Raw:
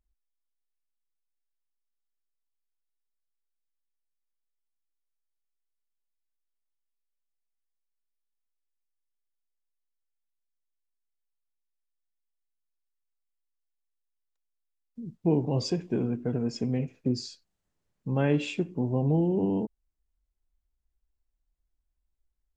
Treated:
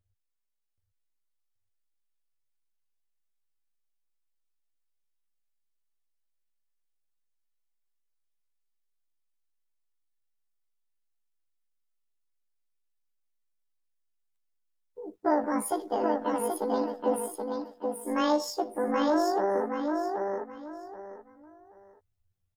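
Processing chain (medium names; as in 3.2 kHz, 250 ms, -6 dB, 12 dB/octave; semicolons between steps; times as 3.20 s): rotating-head pitch shifter +12 st; on a send: feedback delay 778 ms, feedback 25%, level -4 dB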